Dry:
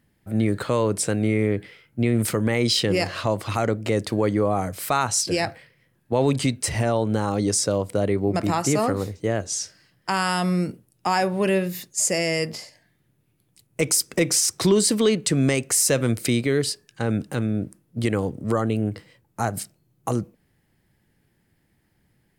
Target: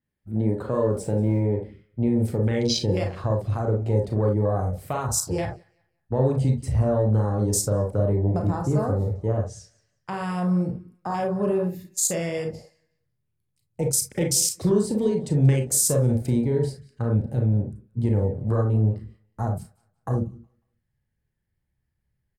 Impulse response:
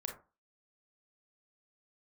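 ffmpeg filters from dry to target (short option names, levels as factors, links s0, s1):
-filter_complex "[0:a]asettb=1/sr,asplit=3[s0][s1][s2];[s0]atrim=end=0.924[s3];[s1]atrim=start=0.92:end=1.4,asetpts=PTS-STARTPTS,afade=t=in:d=0.004:c=qsin,afade=t=out:st=0.476:d=0.004:c=qsin,aeval=exprs='val(0)+0.5*0.0211*sgn(val(0))':c=same[s4];[s2]atrim=start=1.396[s5];[s3][s4]acrossfade=d=0.004:c1=hsin:c2=qsin[s6];[s6][s5]acrossfade=d=0.004:c1=qsin:c2=hsin,asplit=2[s7][s8];[s8]adelay=182,lowpass=f=4900:p=1,volume=0.126,asplit=2[s9][s10];[s10]adelay=182,lowpass=f=4900:p=1,volume=0.33,asplit=2[s11][s12];[s12]adelay=182,lowpass=f=4900:p=1,volume=0.33[s13];[s7][s9][s11][s13]amix=inputs=4:normalize=0,afwtdn=0.0447,acrossover=split=850|3500[s14][s15][s16];[s14]asubboost=boost=4.5:cutoff=120[s17];[s15]acompressor=threshold=0.0112:ratio=6[s18];[s17][s18][s16]amix=inputs=3:normalize=0[s19];[1:a]atrim=start_sample=2205,atrim=end_sample=3969[s20];[s19][s20]afir=irnorm=-1:irlink=0,adynamicequalizer=threshold=0.0112:dfrequency=4800:dqfactor=0.7:tfrequency=4800:tqfactor=0.7:attack=5:release=100:ratio=0.375:range=1.5:mode=boostabove:tftype=highshelf"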